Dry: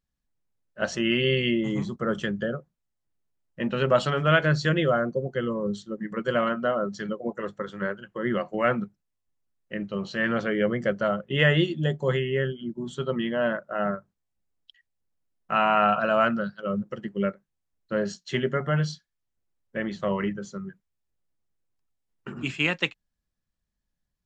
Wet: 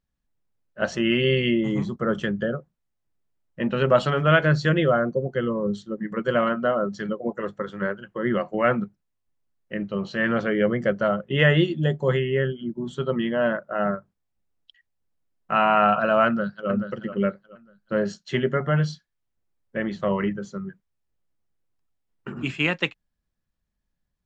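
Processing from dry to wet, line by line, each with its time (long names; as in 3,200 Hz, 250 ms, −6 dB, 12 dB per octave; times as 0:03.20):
0:16.26–0:16.69: delay throw 430 ms, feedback 30%, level −8.5 dB
whole clip: high-shelf EQ 4,100 Hz −8 dB; level +3 dB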